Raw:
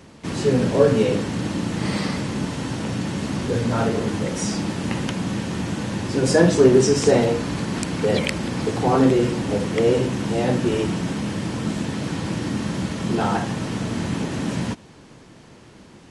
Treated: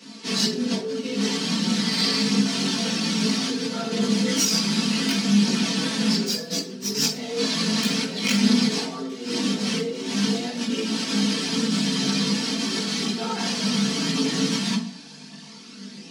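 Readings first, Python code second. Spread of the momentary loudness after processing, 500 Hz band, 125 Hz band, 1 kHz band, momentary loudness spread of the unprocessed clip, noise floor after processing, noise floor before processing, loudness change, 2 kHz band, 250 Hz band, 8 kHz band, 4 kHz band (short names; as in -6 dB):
8 LU, -10.5 dB, -7.0 dB, -6.0 dB, 10 LU, -42 dBFS, -46 dBFS, -1.0 dB, 0.0 dB, -0.5 dB, +5.0 dB, +9.5 dB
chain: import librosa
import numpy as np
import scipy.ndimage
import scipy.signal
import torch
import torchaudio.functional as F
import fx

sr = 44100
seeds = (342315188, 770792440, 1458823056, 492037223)

y = fx.tracing_dist(x, sr, depth_ms=0.2)
y = fx.over_compress(y, sr, threshold_db=-25.0, ratio=-1.0)
y = scipy.signal.sosfilt(scipy.signal.butter(4, 190.0, 'highpass', fs=sr, output='sos'), y)
y = fx.peak_eq(y, sr, hz=4700.0, db=13.0, octaves=0.9)
y = y + 0.65 * np.pad(y, (int(4.5 * sr / 1000.0), 0))[:len(y)]
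y = fx.room_shoebox(y, sr, seeds[0], volume_m3=370.0, walls='furnished', distance_m=1.8)
y = fx.chorus_voices(y, sr, voices=4, hz=0.22, base_ms=19, depth_ms=3.6, mix_pct=60)
y = fx.peak_eq(y, sr, hz=590.0, db=-6.5, octaves=2.1)
y = y + 10.0 ** (-23.5 / 20.0) * np.pad(y, (int(119 * sr / 1000.0), 0))[:len(y)]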